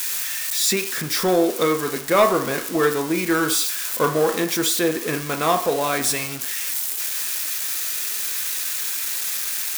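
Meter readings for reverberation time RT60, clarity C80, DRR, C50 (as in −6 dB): 0.65 s, 14.0 dB, 6.0 dB, 10.5 dB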